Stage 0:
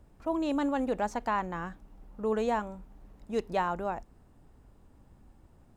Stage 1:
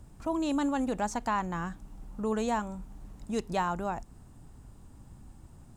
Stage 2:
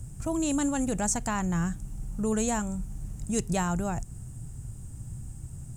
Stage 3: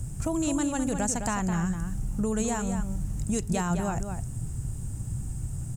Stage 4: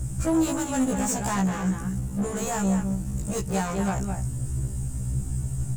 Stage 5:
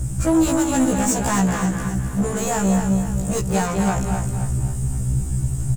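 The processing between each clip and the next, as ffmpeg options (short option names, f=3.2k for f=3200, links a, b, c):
-filter_complex "[0:a]equalizer=f=125:t=o:w=1:g=4,equalizer=f=500:t=o:w=1:g=-6,equalizer=f=2k:t=o:w=1:g=-3,equalizer=f=8k:t=o:w=1:g=8,asplit=2[a][b];[b]acompressor=threshold=-41dB:ratio=6,volume=0dB[c];[a][c]amix=inputs=2:normalize=0"
-af "equalizer=f=125:t=o:w=1:g=9,equalizer=f=250:t=o:w=1:g=-7,equalizer=f=500:t=o:w=1:g=-5,equalizer=f=1k:t=o:w=1:g=-11,equalizer=f=2k:t=o:w=1:g=-3,equalizer=f=4k:t=o:w=1:g=-9,equalizer=f=8k:t=o:w=1:g=10,volume=8.5dB"
-filter_complex "[0:a]acompressor=threshold=-31dB:ratio=6,asplit=2[a][b];[b]adelay=209.9,volume=-7dB,highshelf=f=4k:g=-4.72[c];[a][c]amix=inputs=2:normalize=0,volume=6dB"
-af "asoftclip=type=hard:threshold=-27dB,afftfilt=real='re*1.73*eq(mod(b,3),0)':imag='im*1.73*eq(mod(b,3),0)':win_size=2048:overlap=0.75,volume=7dB"
-af "aecho=1:1:262|524|786|1048|1310:0.398|0.171|0.0736|0.0317|0.0136,volume=5.5dB"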